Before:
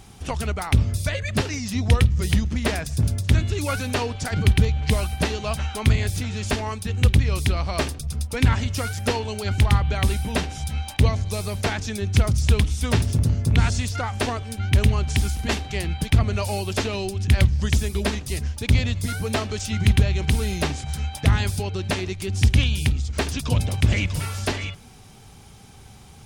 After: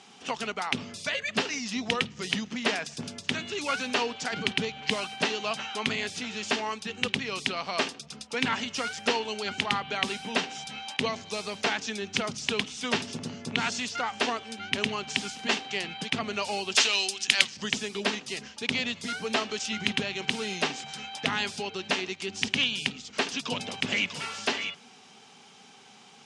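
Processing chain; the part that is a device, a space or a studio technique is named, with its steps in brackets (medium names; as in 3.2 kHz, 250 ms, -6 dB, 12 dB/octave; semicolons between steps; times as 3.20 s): 16.75–17.57 s: tilt EQ +4.5 dB/octave; television speaker (cabinet simulation 230–7200 Hz, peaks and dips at 320 Hz -10 dB, 580 Hz -5 dB, 2.9 kHz +5 dB); trim -1 dB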